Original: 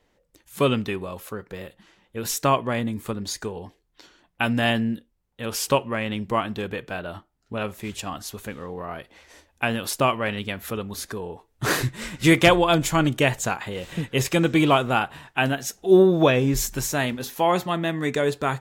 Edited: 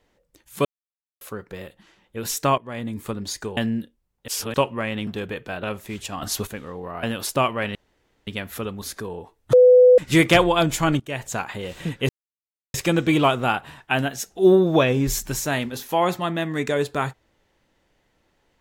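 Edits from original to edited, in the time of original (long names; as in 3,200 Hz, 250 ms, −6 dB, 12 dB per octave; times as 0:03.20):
0:00.65–0:01.21: silence
0:02.58–0:03.00: fade in, from −19.5 dB
0:03.57–0:04.71: remove
0:05.42–0:05.68: reverse
0:06.21–0:06.49: remove
0:07.05–0:07.57: remove
0:08.16–0:08.41: clip gain +9 dB
0:08.97–0:09.67: remove
0:10.39: splice in room tone 0.52 s
0:11.65–0:12.10: beep over 500 Hz −8 dBFS
0:13.12–0:13.59: fade in, from −22.5 dB
0:14.21: splice in silence 0.65 s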